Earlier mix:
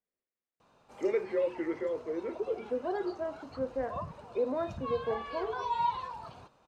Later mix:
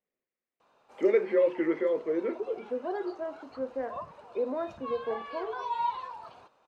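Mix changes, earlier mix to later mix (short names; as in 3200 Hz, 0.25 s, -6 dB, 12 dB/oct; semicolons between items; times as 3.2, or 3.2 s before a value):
first voice +6.0 dB; background: add tone controls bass -14 dB, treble -5 dB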